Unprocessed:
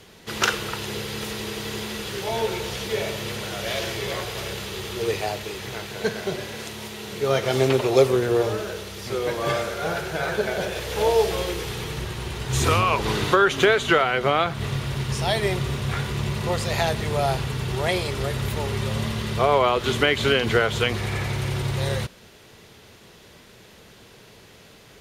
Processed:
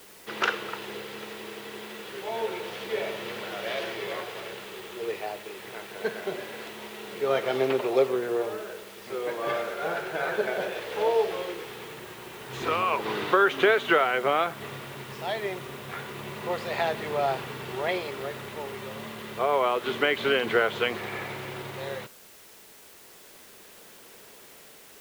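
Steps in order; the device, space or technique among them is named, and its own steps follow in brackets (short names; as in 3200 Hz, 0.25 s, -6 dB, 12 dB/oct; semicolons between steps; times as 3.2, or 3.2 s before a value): shortwave radio (BPF 280–2900 Hz; tremolo 0.29 Hz, depth 38%; white noise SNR 22 dB); gain -2 dB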